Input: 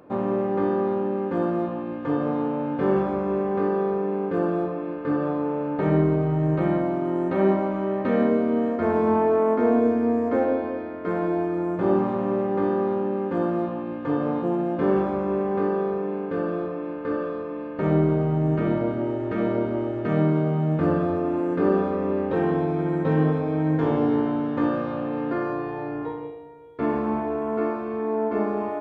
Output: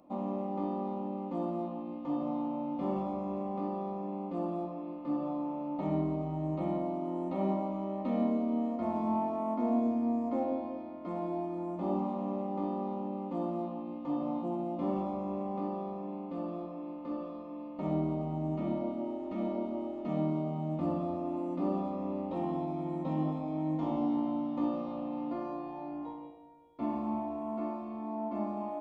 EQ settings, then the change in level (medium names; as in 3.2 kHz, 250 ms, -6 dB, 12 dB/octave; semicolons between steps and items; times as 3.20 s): static phaser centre 430 Hz, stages 6; -7.0 dB